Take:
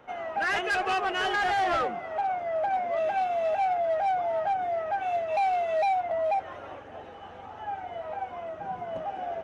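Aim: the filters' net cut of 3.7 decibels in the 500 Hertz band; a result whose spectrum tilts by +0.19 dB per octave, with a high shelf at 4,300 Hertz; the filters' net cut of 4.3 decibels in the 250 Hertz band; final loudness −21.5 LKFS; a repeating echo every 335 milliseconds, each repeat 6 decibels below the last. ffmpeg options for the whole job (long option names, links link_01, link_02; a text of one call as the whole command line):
ffmpeg -i in.wav -af "equalizer=frequency=250:width_type=o:gain=-3.5,equalizer=frequency=500:width_type=o:gain=-5.5,highshelf=frequency=4300:gain=4.5,aecho=1:1:335|670|1005|1340|1675|2010:0.501|0.251|0.125|0.0626|0.0313|0.0157,volume=7.5dB" out.wav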